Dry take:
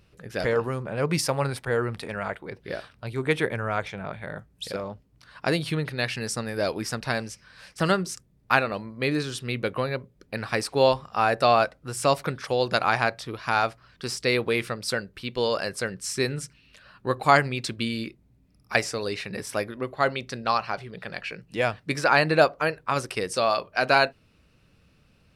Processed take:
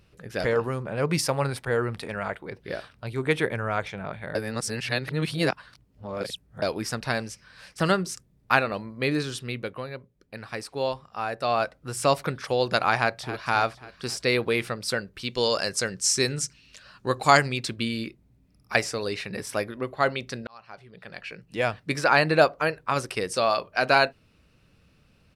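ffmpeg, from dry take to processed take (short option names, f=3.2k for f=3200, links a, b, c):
-filter_complex "[0:a]asplit=2[a][b];[b]afade=t=in:st=12.96:d=0.01,afade=t=out:st=13.47:d=0.01,aecho=0:1:270|540|810|1080|1350|1620:0.251189|0.138154|0.0759846|0.0417915|0.0229853|0.0126419[c];[a][c]amix=inputs=2:normalize=0,asettb=1/sr,asplit=3[d][e][f];[d]atrim=end=15.194[g];[e]atrim=start=15.19:end=17.58,asetpts=PTS-STARTPTS,afade=t=in:d=0.004:c=qsin,afade=t=out:st=2.386:d=0.004:c=qsin,equalizer=f=6.4k:w=1.1:g=11.5[h];[f]atrim=start=17.576[i];[g][h]acrossfade=d=0.004:c1=hsin:c2=qsin[j];[j][i]acrossfade=d=0.004:c1=qsin:c2=hsin,asplit=6[k][l][m][n][o][p];[k]atrim=end=4.352[q];[l]atrim=start=4.348:end=6.622,asetpts=PTS-STARTPTS,areverse[r];[m]atrim=start=6.618:end=9.76,asetpts=PTS-STARTPTS,afade=t=out:st=2.672:d=0.47:silence=0.398107[s];[n]atrim=start=9.76:end=11.41,asetpts=PTS-STARTPTS,volume=-8dB[t];[o]atrim=start=11.41:end=20.47,asetpts=PTS-STARTPTS,afade=t=in:d=0.47:silence=0.398107,afade=t=out:st=9.056:d=0.004:c=hsin[u];[p]atrim=start=20.47,asetpts=PTS-STARTPTS,afade=t=in:d=1.28[v];[q][r]acrossfade=d=0.004:c1=hsin:c2=hsin[w];[s][t][u][v]concat=n=4:v=0:a=1[x];[w][x]acrossfade=d=0.004:c1=hsin:c2=hsin"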